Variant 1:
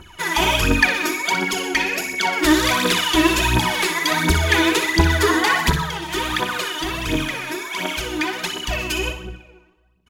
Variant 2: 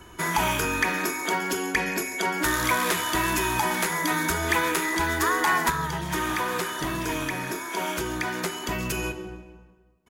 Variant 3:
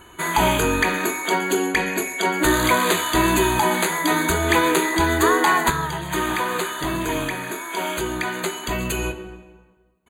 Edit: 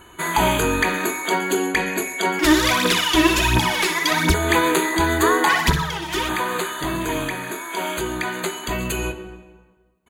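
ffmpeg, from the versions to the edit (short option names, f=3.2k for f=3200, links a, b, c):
-filter_complex "[0:a]asplit=2[a][b];[2:a]asplit=3[c][d][e];[c]atrim=end=2.392[f];[a]atrim=start=2.388:end=4.342[g];[d]atrim=start=4.338:end=5.492[h];[b]atrim=start=5.488:end=6.292[i];[e]atrim=start=6.288[j];[f][g]acrossfade=d=0.004:c1=hsin:c2=hsin[k];[k][h]acrossfade=d=0.004:c1=hsin:c2=hsin[l];[l][i]acrossfade=d=0.004:c1=hsin:c2=hsin[m];[m][j]acrossfade=d=0.004:c1=hsin:c2=hsin"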